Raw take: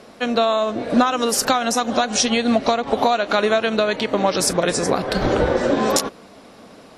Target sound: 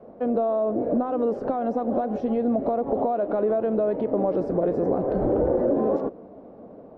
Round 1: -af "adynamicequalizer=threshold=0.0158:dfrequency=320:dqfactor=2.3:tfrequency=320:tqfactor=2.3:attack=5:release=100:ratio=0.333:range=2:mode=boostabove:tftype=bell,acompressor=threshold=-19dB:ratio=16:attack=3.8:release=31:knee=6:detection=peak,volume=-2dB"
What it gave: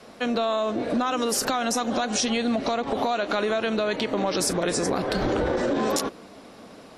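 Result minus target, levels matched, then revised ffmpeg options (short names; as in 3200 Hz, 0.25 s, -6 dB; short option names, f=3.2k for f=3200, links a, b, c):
500 Hz band -2.5 dB
-af "adynamicequalizer=threshold=0.0158:dfrequency=320:dqfactor=2.3:tfrequency=320:tqfactor=2.3:attack=5:release=100:ratio=0.333:range=2:mode=boostabove:tftype=bell,acompressor=threshold=-19dB:ratio=16:attack=3.8:release=31:knee=6:detection=peak,lowpass=f=590:t=q:w=1.5,volume=-2dB"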